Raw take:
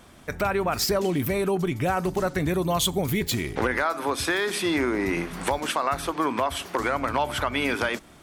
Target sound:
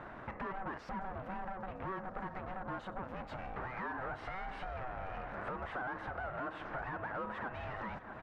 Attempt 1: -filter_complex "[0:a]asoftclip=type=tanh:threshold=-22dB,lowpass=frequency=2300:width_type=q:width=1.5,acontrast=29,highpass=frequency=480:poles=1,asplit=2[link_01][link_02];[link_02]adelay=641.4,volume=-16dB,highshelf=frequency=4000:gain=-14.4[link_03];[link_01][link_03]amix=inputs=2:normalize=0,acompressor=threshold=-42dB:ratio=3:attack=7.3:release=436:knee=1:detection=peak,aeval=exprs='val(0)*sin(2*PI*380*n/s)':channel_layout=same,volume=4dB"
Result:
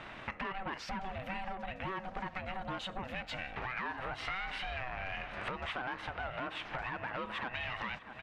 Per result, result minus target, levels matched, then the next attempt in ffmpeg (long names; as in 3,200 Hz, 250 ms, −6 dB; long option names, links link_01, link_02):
soft clipping: distortion −7 dB; 2,000 Hz band +2.0 dB
-filter_complex "[0:a]asoftclip=type=tanh:threshold=-32.5dB,lowpass=frequency=2300:width_type=q:width=1.5,acontrast=29,highpass=frequency=480:poles=1,asplit=2[link_01][link_02];[link_02]adelay=641.4,volume=-16dB,highshelf=frequency=4000:gain=-14.4[link_03];[link_01][link_03]amix=inputs=2:normalize=0,acompressor=threshold=-42dB:ratio=3:attack=7.3:release=436:knee=1:detection=peak,aeval=exprs='val(0)*sin(2*PI*380*n/s)':channel_layout=same,volume=4dB"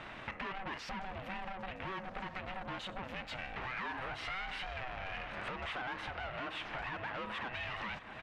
2,000 Hz band +2.5 dB
-filter_complex "[0:a]asoftclip=type=tanh:threshold=-32.5dB,lowpass=frequency=1100:width_type=q:width=1.5,acontrast=29,highpass=frequency=480:poles=1,asplit=2[link_01][link_02];[link_02]adelay=641.4,volume=-16dB,highshelf=frequency=4000:gain=-14.4[link_03];[link_01][link_03]amix=inputs=2:normalize=0,acompressor=threshold=-42dB:ratio=3:attack=7.3:release=436:knee=1:detection=peak,aeval=exprs='val(0)*sin(2*PI*380*n/s)':channel_layout=same,volume=4dB"